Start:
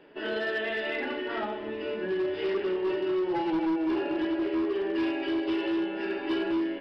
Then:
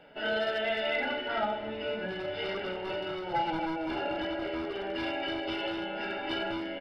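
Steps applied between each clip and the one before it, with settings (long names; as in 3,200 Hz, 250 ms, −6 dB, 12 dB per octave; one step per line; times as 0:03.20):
comb filter 1.4 ms, depth 75%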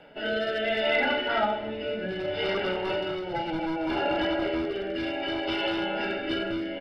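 rotating-speaker cabinet horn 0.65 Hz
level +7 dB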